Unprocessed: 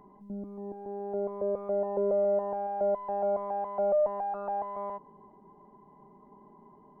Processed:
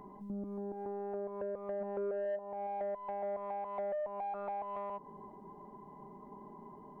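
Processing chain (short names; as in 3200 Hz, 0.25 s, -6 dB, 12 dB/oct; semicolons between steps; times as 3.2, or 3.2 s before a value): 1.8–2.35 bell 220 Hz -> 570 Hz +12 dB 0.74 oct; compressor 4:1, threshold -41 dBFS, peak gain reduction 21 dB; soft clip -34.5 dBFS, distortion -20 dB; gain +4 dB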